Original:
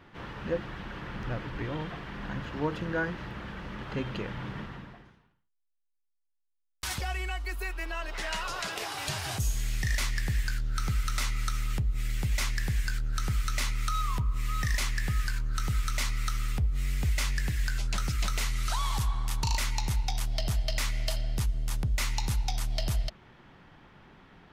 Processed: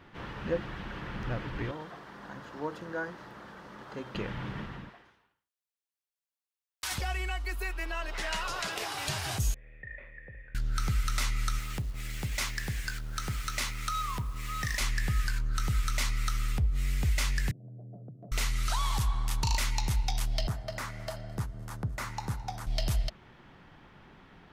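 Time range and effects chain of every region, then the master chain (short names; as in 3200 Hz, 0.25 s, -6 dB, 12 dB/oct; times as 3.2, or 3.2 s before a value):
1.71–4.15 HPF 570 Hz 6 dB/oct + bell 2600 Hz -11 dB 1.3 oct
4.89–6.92 HPF 94 Hz + bell 160 Hz -15 dB 1.7 oct
9.54–10.55 vocal tract filter e + high shelf 3300 Hz -7.5 dB + flutter echo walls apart 11 m, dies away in 0.32 s
11.59–14.81 level-crossing sampler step -48.5 dBFS + low shelf 93 Hz -9.5 dB
17.51–18.32 Chebyshev band-pass 120–700 Hz, order 5 + compressor, threshold -43 dBFS
20.47–22.67 HPF 96 Hz + resonant high shelf 2000 Hz -9.5 dB, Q 1.5 + echo 0.215 s -22 dB
whole clip: dry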